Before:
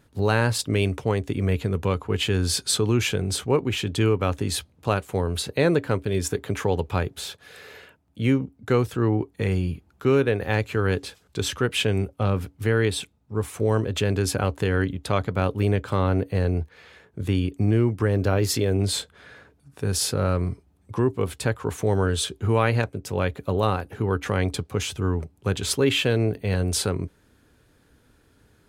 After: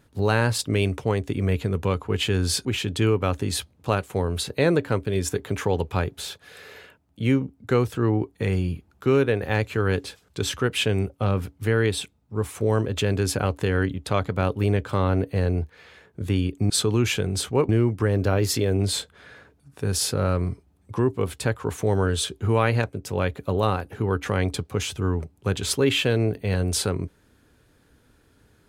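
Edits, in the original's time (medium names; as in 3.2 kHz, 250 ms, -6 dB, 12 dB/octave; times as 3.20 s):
2.65–3.64 s: move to 17.69 s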